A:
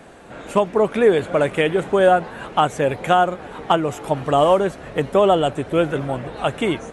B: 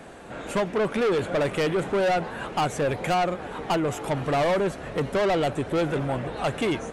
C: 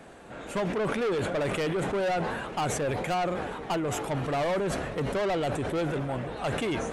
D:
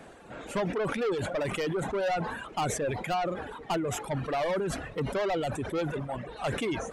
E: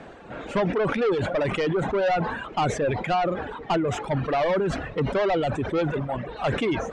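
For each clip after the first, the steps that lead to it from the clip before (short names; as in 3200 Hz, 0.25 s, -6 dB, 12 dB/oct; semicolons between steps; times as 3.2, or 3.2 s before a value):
soft clip -20 dBFS, distortion -7 dB
sustainer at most 32 dB/s; gain -5 dB
reverb removal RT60 1.7 s
air absorption 120 m; gain +6.5 dB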